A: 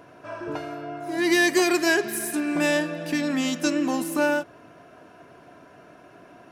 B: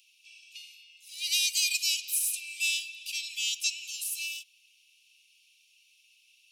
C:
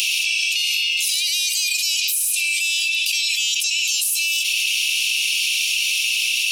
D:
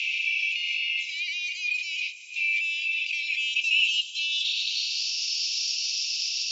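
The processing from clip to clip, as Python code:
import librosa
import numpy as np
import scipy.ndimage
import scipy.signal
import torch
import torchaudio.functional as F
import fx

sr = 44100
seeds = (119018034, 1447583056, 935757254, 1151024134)

y1 = scipy.signal.sosfilt(scipy.signal.butter(16, 2500.0, 'highpass', fs=sr, output='sos'), x)
y1 = y1 * librosa.db_to_amplitude(3.0)
y2 = fx.env_flatten(y1, sr, amount_pct=100)
y2 = y2 * librosa.db_to_amplitude(4.0)
y3 = fx.brickwall_bandpass(y2, sr, low_hz=1700.0, high_hz=7600.0)
y3 = fx.filter_sweep_bandpass(y3, sr, from_hz=2200.0, to_hz=5000.0, start_s=3.31, end_s=5.13, q=6.5)
y3 = y3 * librosa.db_to_amplitude(3.0)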